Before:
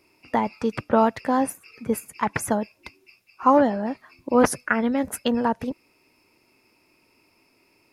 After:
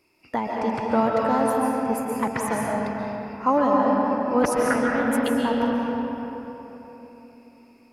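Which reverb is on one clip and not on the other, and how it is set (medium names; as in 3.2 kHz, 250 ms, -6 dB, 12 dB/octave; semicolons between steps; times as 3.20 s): algorithmic reverb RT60 3.7 s, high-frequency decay 0.5×, pre-delay 100 ms, DRR -3 dB; trim -4 dB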